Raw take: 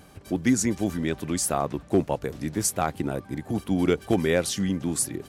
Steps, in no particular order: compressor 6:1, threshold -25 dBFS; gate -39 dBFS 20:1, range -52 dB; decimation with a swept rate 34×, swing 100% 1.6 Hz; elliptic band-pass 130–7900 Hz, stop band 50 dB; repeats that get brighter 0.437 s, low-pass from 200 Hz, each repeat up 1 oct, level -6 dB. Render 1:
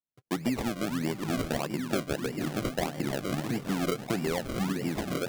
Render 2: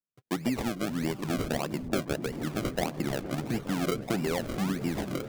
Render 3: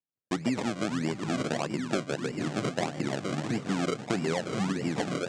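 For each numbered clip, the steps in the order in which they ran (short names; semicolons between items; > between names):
repeats that get brighter > compressor > gate > elliptic band-pass > decimation with a swept rate; gate > compressor > elliptic band-pass > decimation with a swept rate > repeats that get brighter; repeats that get brighter > decimation with a swept rate > elliptic band-pass > gate > compressor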